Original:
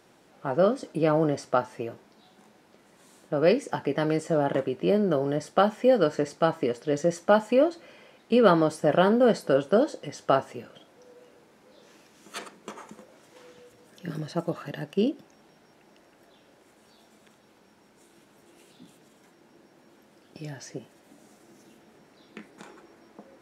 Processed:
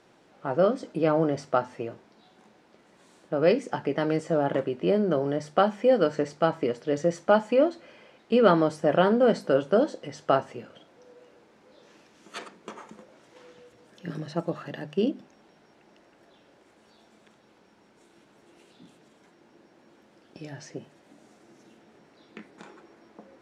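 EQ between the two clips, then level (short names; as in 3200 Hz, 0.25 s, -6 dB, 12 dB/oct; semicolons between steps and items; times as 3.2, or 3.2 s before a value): air absorption 56 m; notches 50/100/150/200/250 Hz; 0.0 dB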